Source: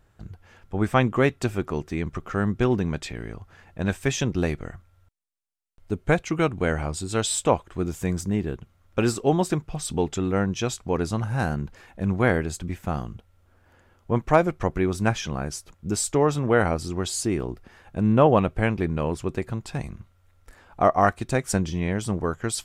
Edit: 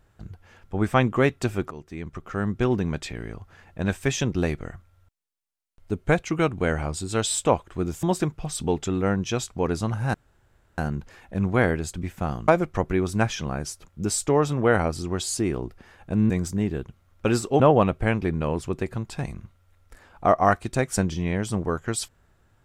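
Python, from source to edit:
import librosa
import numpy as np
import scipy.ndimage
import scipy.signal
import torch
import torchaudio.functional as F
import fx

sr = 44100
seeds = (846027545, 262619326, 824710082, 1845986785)

y = fx.edit(x, sr, fx.fade_in_from(start_s=1.71, length_s=1.43, curve='qsin', floor_db=-14.0),
    fx.move(start_s=8.03, length_s=1.3, to_s=18.16),
    fx.insert_room_tone(at_s=11.44, length_s=0.64),
    fx.cut(start_s=13.14, length_s=1.2), tone=tone)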